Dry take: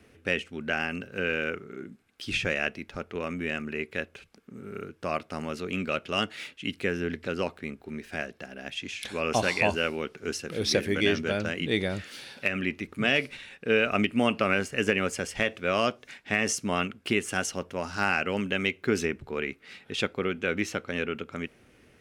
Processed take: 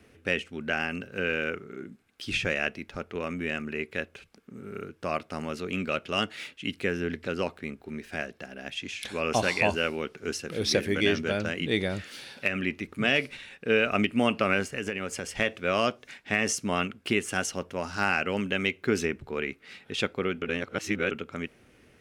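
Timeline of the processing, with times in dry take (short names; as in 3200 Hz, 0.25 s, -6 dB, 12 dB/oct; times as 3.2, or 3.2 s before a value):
14.75–15.36 compressor 2.5:1, threshold -30 dBFS
20.42–21.11 reverse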